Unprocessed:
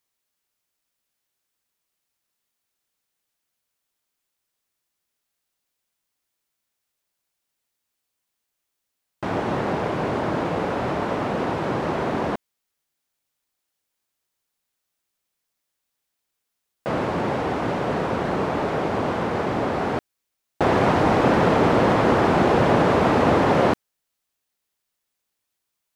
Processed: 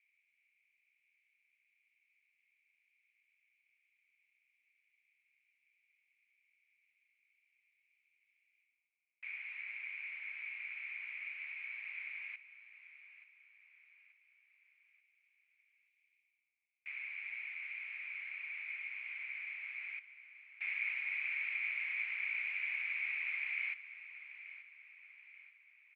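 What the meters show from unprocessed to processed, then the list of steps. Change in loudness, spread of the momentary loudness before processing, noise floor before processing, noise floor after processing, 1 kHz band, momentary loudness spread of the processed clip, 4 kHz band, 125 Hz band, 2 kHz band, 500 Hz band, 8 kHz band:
-18.0 dB, 9 LU, -80 dBFS, -81 dBFS, under -40 dB, 20 LU, -21.0 dB, under -40 dB, -7.5 dB, under -40 dB, under -30 dB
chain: tilt EQ +2.5 dB/octave; reverse; upward compressor, threshold -38 dBFS; reverse; Butterworth band-pass 2.3 kHz, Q 6.8; feedback delay 882 ms, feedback 47%, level -14 dB; trim -1 dB

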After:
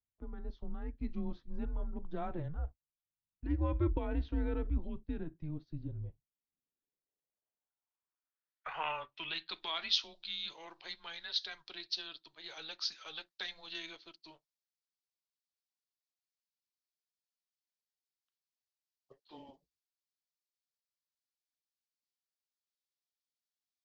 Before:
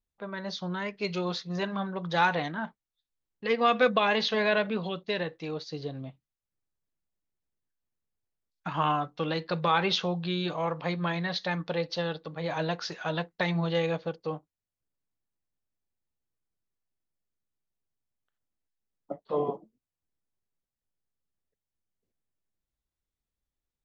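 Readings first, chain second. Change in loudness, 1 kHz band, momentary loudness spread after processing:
-9.5 dB, -16.5 dB, 15 LU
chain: band-pass sweep 240 Hz -> 4.8 kHz, 5.86–9.85 s; frequency shift -160 Hz; trim +2 dB

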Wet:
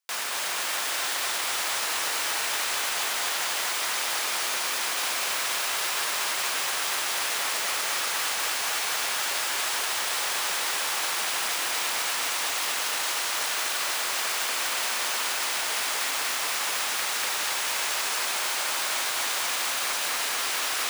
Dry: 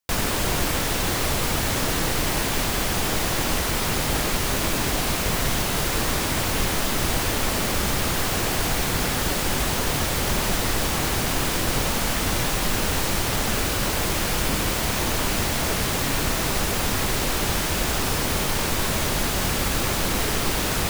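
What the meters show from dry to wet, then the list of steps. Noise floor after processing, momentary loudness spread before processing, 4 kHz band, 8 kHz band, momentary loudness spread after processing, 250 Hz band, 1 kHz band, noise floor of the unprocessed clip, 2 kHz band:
-29 dBFS, 0 LU, -0.5 dB, -1.0 dB, 0 LU, -22.0 dB, -3.0 dB, -25 dBFS, -1.0 dB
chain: high-pass 940 Hz 12 dB/octave; peaking EQ 15 kHz -10.5 dB 0.24 oct; peak limiter -21 dBFS, peak gain reduction 7 dB; bit-crushed delay 240 ms, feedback 80%, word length 9-bit, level -4 dB

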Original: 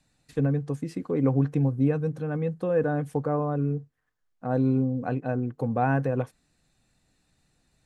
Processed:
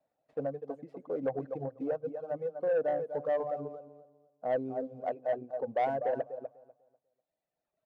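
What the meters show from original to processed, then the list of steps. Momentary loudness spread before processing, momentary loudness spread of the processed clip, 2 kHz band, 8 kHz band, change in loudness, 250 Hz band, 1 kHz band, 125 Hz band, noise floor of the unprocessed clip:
7 LU, 12 LU, -9.0 dB, no reading, -7.5 dB, -15.5 dB, -4.0 dB, -23.0 dB, -73 dBFS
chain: dead-time distortion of 0.08 ms; band-pass filter 620 Hz, Q 5.5; on a send: feedback delay 247 ms, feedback 28%, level -6 dB; on the sum: reverb removal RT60 1.7 s; saturation -29.5 dBFS, distortion -16 dB; trim +7 dB

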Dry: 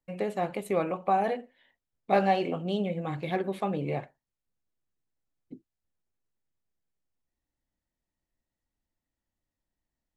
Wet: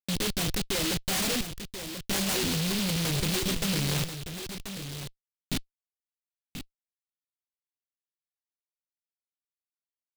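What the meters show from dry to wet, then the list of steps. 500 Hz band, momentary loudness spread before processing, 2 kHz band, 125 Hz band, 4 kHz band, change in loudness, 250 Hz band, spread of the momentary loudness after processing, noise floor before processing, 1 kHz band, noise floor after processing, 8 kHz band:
-6.5 dB, 8 LU, +5.0 dB, +5.5 dB, +16.5 dB, +0.5 dB, +2.0 dB, 12 LU, under -85 dBFS, -10.5 dB, under -85 dBFS, no reading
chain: tilt EQ -2 dB/octave; level rider gain up to 15.5 dB; in parallel at -5.5 dB: hard clipper -14.5 dBFS, distortion -8 dB; on the sum: reverb removal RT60 0.58 s; reverse; compression 16:1, threshold -20 dBFS, peak gain reduction 15 dB; reverse; peaking EQ 110 Hz +3 dB 1.2 oct; Schmitt trigger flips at -31.5 dBFS; delay 1035 ms -9.5 dB; delay time shaken by noise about 3.4 kHz, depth 0.36 ms

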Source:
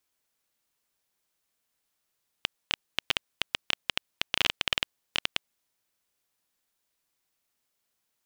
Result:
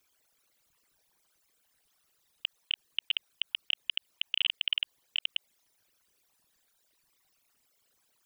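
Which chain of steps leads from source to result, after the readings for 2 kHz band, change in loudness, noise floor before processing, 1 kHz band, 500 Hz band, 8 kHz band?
-5.0 dB, -1.5 dB, -80 dBFS, under -15 dB, under -20 dB, under -20 dB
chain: resonances exaggerated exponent 3; peak limiter -19.5 dBFS, peak gain reduction 9 dB; trim +7 dB

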